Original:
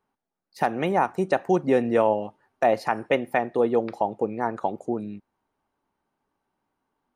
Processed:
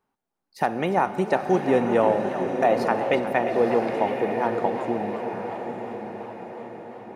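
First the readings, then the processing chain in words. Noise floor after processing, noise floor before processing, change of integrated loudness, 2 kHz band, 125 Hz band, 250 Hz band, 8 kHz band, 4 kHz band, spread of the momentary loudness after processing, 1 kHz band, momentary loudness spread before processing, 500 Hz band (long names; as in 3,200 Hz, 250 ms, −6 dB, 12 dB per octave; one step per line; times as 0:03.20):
−81 dBFS, −82 dBFS, +1.0 dB, +1.5 dB, +1.5 dB, +1.5 dB, can't be measured, +2.0 dB, 15 LU, +2.0 dB, 9 LU, +1.5 dB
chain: feedback delay with all-pass diffusion 944 ms, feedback 51%, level −7 dB
four-comb reverb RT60 3.8 s, combs from 31 ms, DRR 11.5 dB
feedback echo with a swinging delay time 359 ms, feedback 52%, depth 185 cents, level −12 dB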